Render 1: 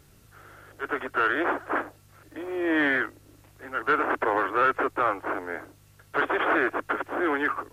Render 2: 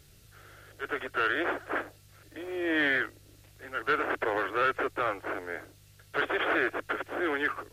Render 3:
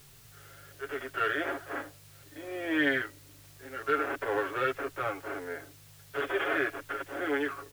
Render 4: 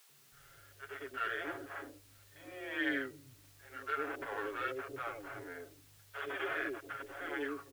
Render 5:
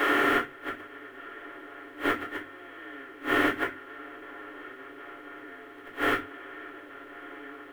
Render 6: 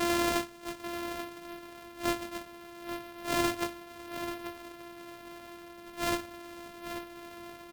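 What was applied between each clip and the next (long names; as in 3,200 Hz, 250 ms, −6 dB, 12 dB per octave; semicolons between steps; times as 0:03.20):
octave-band graphic EQ 250/1,000/4,000 Hz −7/−9/+4 dB
harmonic and percussive parts rebalanced percussive −10 dB; comb filter 7.2 ms, depth 72%; background noise white −58 dBFS
three-band delay without the direct sound highs, mids, lows 90/320 ms, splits 150/530 Hz; level −7 dB
compressor on every frequency bin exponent 0.2; gate with flip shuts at −24 dBFS, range −26 dB; convolution reverb, pre-delay 3 ms, DRR −6.5 dB; level +4.5 dB
samples sorted by size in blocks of 128 samples; flanger 0.47 Hz, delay 2.8 ms, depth 5.1 ms, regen −70%; single-tap delay 836 ms −10.5 dB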